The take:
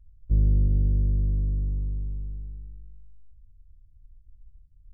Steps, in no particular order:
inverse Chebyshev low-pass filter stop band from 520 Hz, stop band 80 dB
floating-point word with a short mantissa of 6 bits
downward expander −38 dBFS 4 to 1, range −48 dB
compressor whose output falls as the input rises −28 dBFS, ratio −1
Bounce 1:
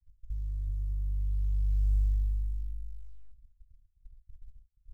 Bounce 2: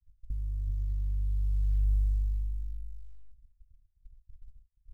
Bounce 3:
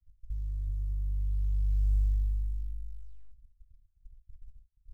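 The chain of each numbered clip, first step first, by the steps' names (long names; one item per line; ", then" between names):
compressor whose output falls as the input rises, then inverse Chebyshev low-pass filter, then floating-point word with a short mantissa, then downward expander
inverse Chebyshev low-pass filter, then floating-point word with a short mantissa, then compressor whose output falls as the input rises, then downward expander
compressor whose output falls as the input rises, then inverse Chebyshev low-pass filter, then downward expander, then floating-point word with a short mantissa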